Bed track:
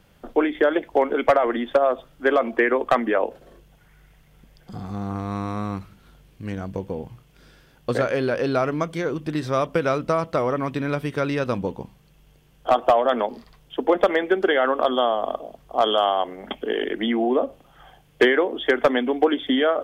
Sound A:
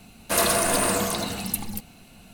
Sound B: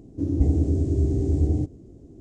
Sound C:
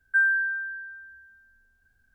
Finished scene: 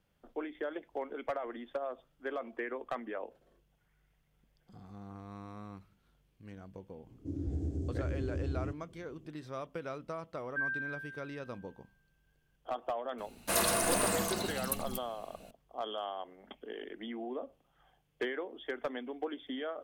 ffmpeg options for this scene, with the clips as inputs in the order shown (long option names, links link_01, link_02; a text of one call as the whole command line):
ffmpeg -i bed.wav -i cue0.wav -i cue1.wav -i cue2.wav -filter_complex "[0:a]volume=-19dB[link_01];[2:a]alimiter=limit=-14.5dB:level=0:latency=1:release=71[link_02];[3:a]aecho=1:1:1.1:0.65[link_03];[link_02]atrim=end=2.2,asetpts=PTS-STARTPTS,volume=-13dB,afade=type=in:duration=0.004:curve=hsin,afade=type=out:start_time=2.196:duration=0.004:curve=hsin,adelay=7070[link_04];[link_03]atrim=end=2.14,asetpts=PTS-STARTPTS,volume=-14dB,afade=type=in:duration=0.004:curve=hsin,afade=type=out:start_time=2.136:duration=0.004:curve=hsin,adelay=459522S[link_05];[1:a]atrim=end=2.33,asetpts=PTS-STARTPTS,volume=-8dB,afade=type=in:duration=0.004:curve=hsin,afade=type=out:start_time=2.326:duration=0.004:curve=hsin,adelay=13180[link_06];[link_01][link_04][link_05][link_06]amix=inputs=4:normalize=0" out.wav